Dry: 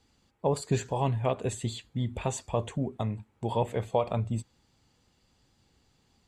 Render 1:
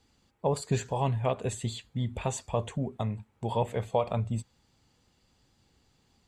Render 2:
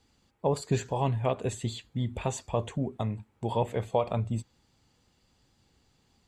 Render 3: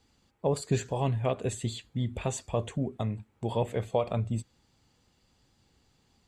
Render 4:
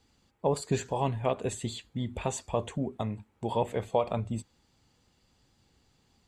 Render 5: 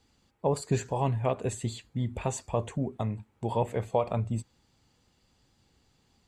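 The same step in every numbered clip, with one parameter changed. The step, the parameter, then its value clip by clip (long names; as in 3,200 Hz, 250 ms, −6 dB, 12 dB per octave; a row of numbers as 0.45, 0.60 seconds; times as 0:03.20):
dynamic equaliser, frequency: 320, 9,100, 920, 120, 3,400 Hertz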